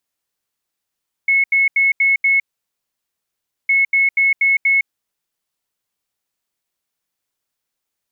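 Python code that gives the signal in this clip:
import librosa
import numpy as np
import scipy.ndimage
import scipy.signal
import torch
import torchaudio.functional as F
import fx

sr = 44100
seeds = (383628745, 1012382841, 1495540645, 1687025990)

y = fx.beep_pattern(sr, wave='sine', hz=2190.0, on_s=0.16, off_s=0.08, beeps=5, pause_s=1.29, groups=2, level_db=-11.0)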